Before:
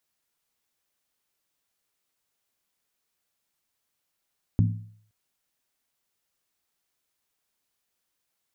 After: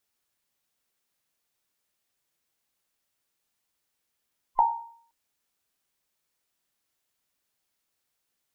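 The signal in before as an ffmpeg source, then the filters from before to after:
-f lavfi -i "aevalsrc='0.168*pow(10,-3*t/0.58)*sin(2*PI*107*t)+0.0944*pow(10,-3*t/0.459)*sin(2*PI*170.6*t)+0.0531*pow(10,-3*t/0.397)*sin(2*PI*228.6*t)+0.0299*pow(10,-3*t/0.383)*sin(2*PI*245.7*t)+0.0168*pow(10,-3*t/0.356)*sin(2*PI*283.9*t)':d=0.52:s=44100"
-af "afftfilt=real='real(if(between(b,1,1008),(2*floor((b-1)/48)+1)*48-b,b),0)':imag='imag(if(between(b,1,1008),(2*floor((b-1)/48)+1)*48-b,b),0)*if(between(b,1,1008),-1,1)':win_size=2048:overlap=0.75"

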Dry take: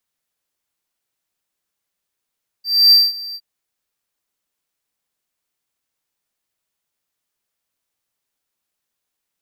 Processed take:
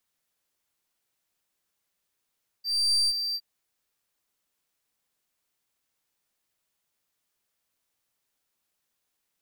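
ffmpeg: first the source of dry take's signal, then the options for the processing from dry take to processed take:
-f lavfi -i "aevalsrc='0.668*(1-4*abs(mod(4690*t+0.25,1)-0.5))':d=0.762:s=44100,afade=t=in:d=0.275,afade=t=out:st=0.275:d=0.208:silence=0.0891,afade=t=out:st=0.71:d=0.052"
-af "areverse,acompressor=threshold=-21dB:ratio=5,areverse,aeval=exprs='clip(val(0),-1,0.0398)':c=same"

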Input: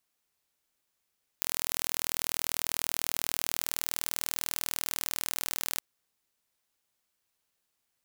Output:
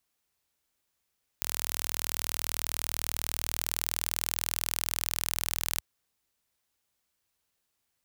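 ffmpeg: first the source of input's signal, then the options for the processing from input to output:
-f lavfi -i "aevalsrc='0.708*eq(mod(n,1100),0)':d=4.37:s=44100"
-af "equalizer=f=68:t=o:w=1.5:g=6.5"

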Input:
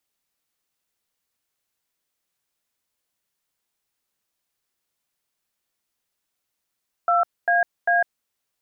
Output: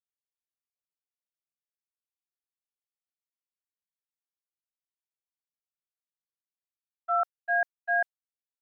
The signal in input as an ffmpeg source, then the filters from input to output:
-f lavfi -i "aevalsrc='0.119*clip(min(mod(t,0.397),0.153-mod(t,0.397))/0.002,0,1)*(eq(floor(t/0.397),0)*(sin(2*PI*697*mod(t,0.397))+sin(2*PI*1336*mod(t,0.397)))+eq(floor(t/0.397),1)*(sin(2*PI*697*mod(t,0.397))+sin(2*PI*1633*mod(t,0.397)))+eq(floor(t/0.397),2)*(sin(2*PI*697*mod(t,0.397))+sin(2*PI*1633*mod(t,0.397))))':d=1.191:s=44100"
-af "agate=range=-33dB:threshold=-14dB:ratio=3:detection=peak,highpass=f=690:p=1"

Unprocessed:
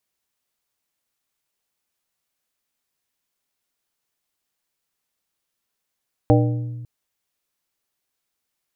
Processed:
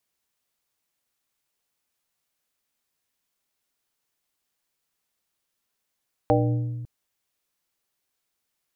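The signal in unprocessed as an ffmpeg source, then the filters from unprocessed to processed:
-f lavfi -i "aevalsrc='0.224*pow(10,-3*t/1.67)*sin(2*PI*120*t)+0.188*pow(10,-3*t/0.879)*sin(2*PI*300*t)+0.158*pow(10,-3*t/0.633)*sin(2*PI*480*t)+0.133*pow(10,-3*t/0.541)*sin(2*PI*600*t)+0.112*pow(10,-3*t/0.45)*sin(2*PI*780*t)':d=0.55:s=44100"
-filter_complex "[0:a]acrossover=split=450[a][b];[a]alimiter=limit=-18.5dB:level=0:latency=1:release=22[c];[c][b]amix=inputs=2:normalize=0"

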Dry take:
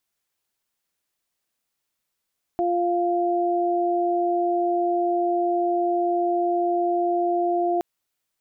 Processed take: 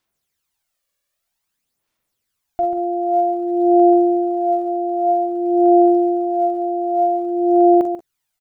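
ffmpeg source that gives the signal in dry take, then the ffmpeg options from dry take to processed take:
-f lavfi -i "aevalsrc='0.075*sin(2*PI*349*t)+0.0794*sin(2*PI*698*t)':d=5.22:s=44100"
-filter_complex "[0:a]asplit=2[a][b];[b]aecho=0:1:43|55:0.316|0.168[c];[a][c]amix=inputs=2:normalize=0,aphaser=in_gain=1:out_gain=1:delay=1.8:decay=0.61:speed=0.52:type=sinusoidal,asplit=2[d][e];[e]aecho=0:1:140:0.376[f];[d][f]amix=inputs=2:normalize=0"

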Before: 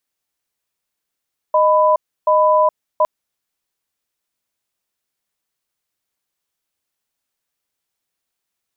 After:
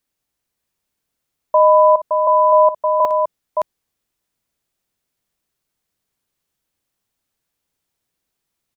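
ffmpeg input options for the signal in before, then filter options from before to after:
-f lavfi -i "aevalsrc='0.224*(sin(2*PI*618*t)+sin(2*PI*997*t))*clip(min(mod(t,0.73),0.42-mod(t,0.73))/0.005,0,1)':d=1.51:s=44100"
-filter_complex "[0:a]lowshelf=f=390:g=9,asplit=2[a][b];[b]aecho=0:1:58|567:0.211|0.562[c];[a][c]amix=inputs=2:normalize=0"

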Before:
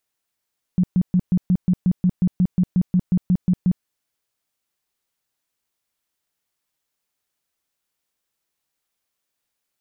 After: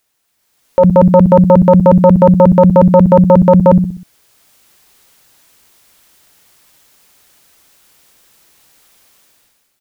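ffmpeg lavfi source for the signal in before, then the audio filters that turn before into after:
-f lavfi -i "aevalsrc='0.224*sin(2*PI*181*mod(t,0.18))*lt(mod(t,0.18),10/181)':d=3.06:s=44100"
-filter_complex "[0:a]dynaudnorm=f=170:g=7:m=16dB,asplit=2[a][b];[b]adelay=63,lowpass=f=880:p=1,volume=-13dB,asplit=2[c][d];[d]adelay=63,lowpass=f=880:p=1,volume=0.46,asplit=2[e][f];[f]adelay=63,lowpass=f=880:p=1,volume=0.46,asplit=2[g][h];[h]adelay=63,lowpass=f=880:p=1,volume=0.46,asplit=2[i][j];[j]adelay=63,lowpass=f=880:p=1,volume=0.46[k];[a][c][e][g][i][k]amix=inputs=6:normalize=0,aeval=exprs='0.841*sin(PI/2*2.82*val(0)/0.841)':c=same"

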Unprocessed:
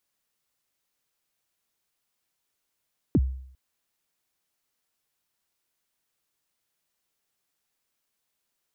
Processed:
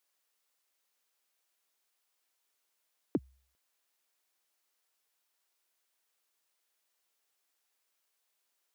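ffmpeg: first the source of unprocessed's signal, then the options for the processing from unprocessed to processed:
-f lavfi -i "aevalsrc='0.188*pow(10,-3*t/0.64)*sin(2*PI*(370*0.045/log(65/370)*(exp(log(65/370)*min(t,0.045)/0.045)-1)+65*max(t-0.045,0)))':d=0.4:s=44100"
-af "highpass=400"

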